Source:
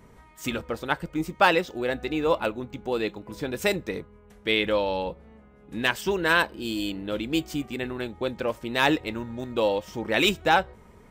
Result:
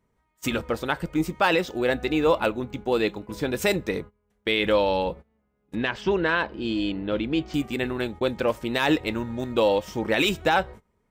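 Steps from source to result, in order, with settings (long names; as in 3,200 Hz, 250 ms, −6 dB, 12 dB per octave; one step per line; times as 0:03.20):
noise gate −41 dBFS, range −23 dB
brickwall limiter −15 dBFS, peak gain reduction 7 dB
0:05.75–0:07.54: high-frequency loss of the air 190 metres
level +4 dB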